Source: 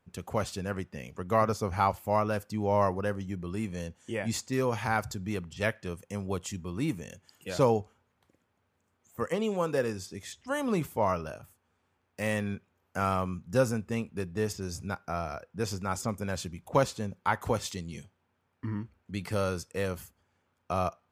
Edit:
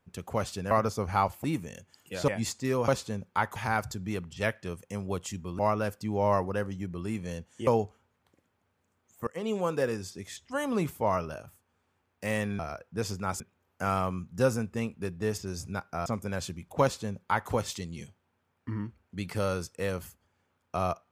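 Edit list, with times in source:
0.71–1.35 cut
2.08–4.16 swap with 6.79–7.63
9.23–9.48 fade in, from -22.5 dB
15.21–16.02 move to 12.55
16.78–17.46 copy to 4.76

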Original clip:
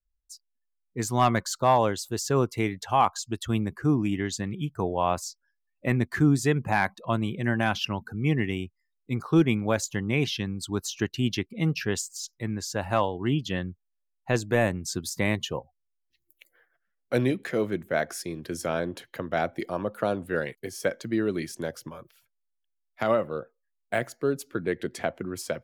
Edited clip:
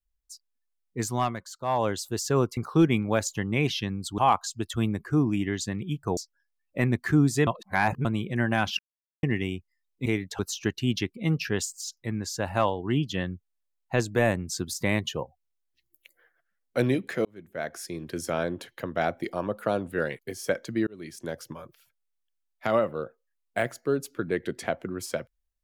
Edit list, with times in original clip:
1.03–1.95 dip -11 dB, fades 0.33 s
2.57–2.9 swap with 9.14–10.75
4.89–5.25 cut
6.55–7.13 reverse
7.87–8.31 mute
17.61–18.41 fade in
21.23–21.96 fade in equal-power

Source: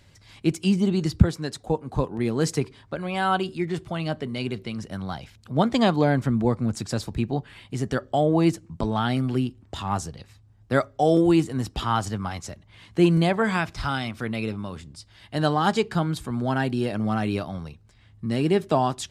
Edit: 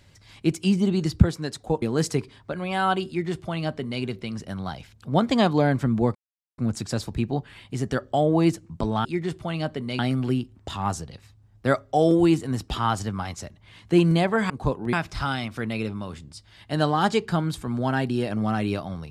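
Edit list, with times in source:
1.82–2.25 move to 13.56
3.51–4.45 copy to 9.05
6.58 insert silence 0.43 s

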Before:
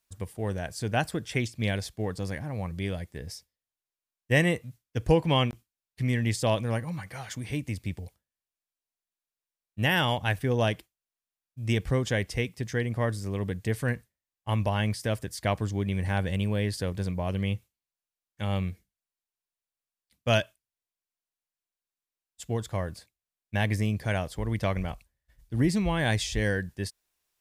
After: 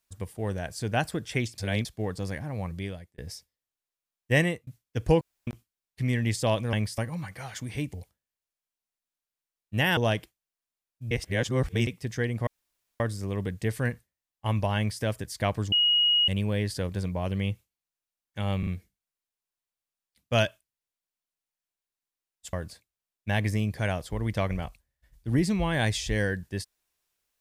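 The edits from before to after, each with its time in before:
1.58–1.85 reverse
2.71–3.18 fade out
4.41–4.67 fade out
5.21–5.47 room tone
7.68–7.98 cut
10.02–10.53 cut
11.67–12.43 reverse
13.03 insert room tone 0.53 s
14.8–15.05 copy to 6.73
15.75–16.31 bleep 2890 Hz -19 dBFS
18.62 stutter 0.04 s, 3 plays
22.48–22.79 cut

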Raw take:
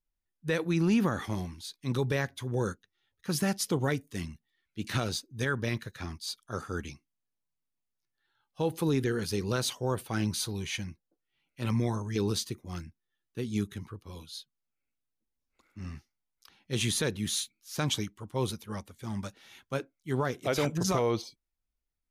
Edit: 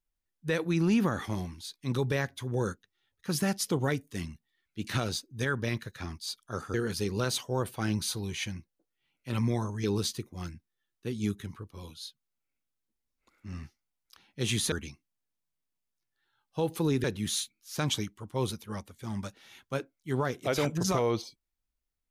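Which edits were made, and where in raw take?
6.74–9.06 move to 17.04

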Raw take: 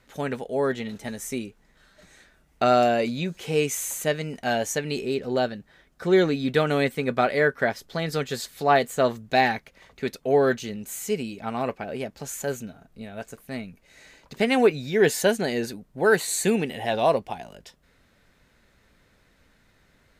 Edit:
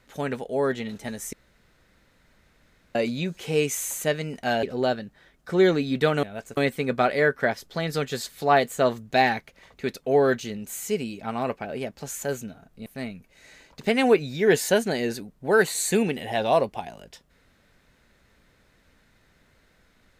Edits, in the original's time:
1.33–2.95 room tone
4.63–5.16 cut
13.05–13.39 move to 6.76

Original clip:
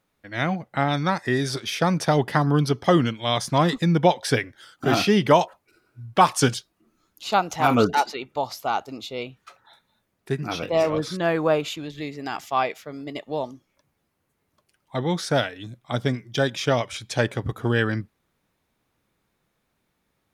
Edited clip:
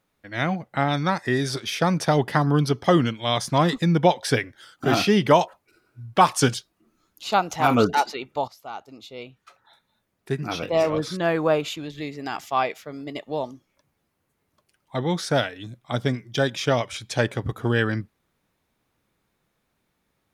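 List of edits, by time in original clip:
8.48–10.43 fade in, from -15 dB

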